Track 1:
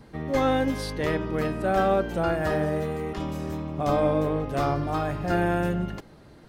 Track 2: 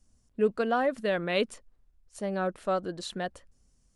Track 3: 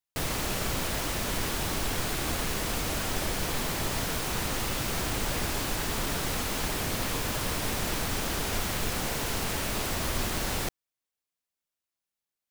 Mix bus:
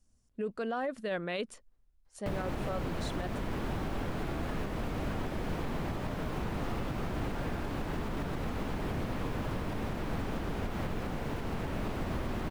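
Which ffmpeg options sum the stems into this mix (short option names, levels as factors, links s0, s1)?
-filter_complex "[0:a]highpass=790,adelay=2050,volume=0.126[s0];[1:a]alimiter=limit=0.0794:level=0:latency=1:release=20,volume=0.596,asplit=2[s1][s2];[2:a]bass=f=250:g=10,treble=f=4000:g=-15,acrossover=split=200|410|1200[s3][s4][s5][s6];[s3]acompressor=threshold=0.0141:ratio=4[s7];[s4]acompressor=threshold=0.0112:ratio=4[s8];[s5]acompressor=threshold=0.00794:ratio=4[s9];[s6]acompressor=threshold=0.00355:ratio=4[s10];[s7][s8][s9][s10]amix=inputs=4:normalize=0,adelay=2100,volume=1.19[s11];[s2]apad=whole_len=376462[s12];[s0][s12]sidechaincompress=threshold=0.00501:ratio=8:attack=7:release=868[s13];[s13][s1][s11]amix=inputs=3:normalize=0,alimiter=level_in=1.12:limit=0.0631:level=0:latency=1:release=137,volume=0.891"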